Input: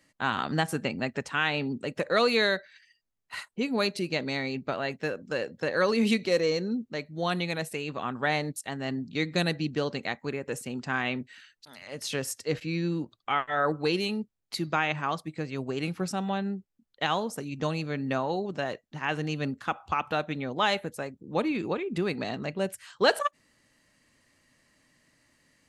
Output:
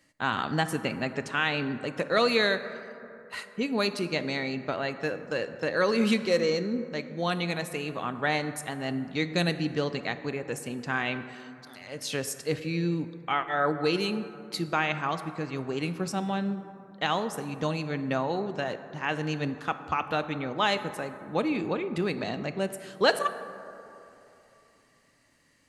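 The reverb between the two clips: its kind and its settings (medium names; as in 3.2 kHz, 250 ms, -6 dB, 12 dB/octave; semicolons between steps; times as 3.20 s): plate-style reverb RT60 3 s, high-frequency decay 0.35×, DRR 10.5 dB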